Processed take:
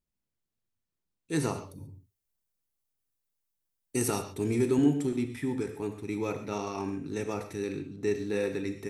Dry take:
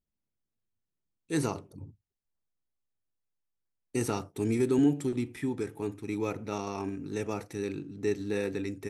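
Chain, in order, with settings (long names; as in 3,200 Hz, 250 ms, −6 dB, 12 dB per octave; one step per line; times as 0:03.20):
0:01.59–0:04.20: high-shelf EQ 7,300 Hz +11.5 dB
reverb whose tail is shaped and stops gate 160 ms flat, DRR 7 dB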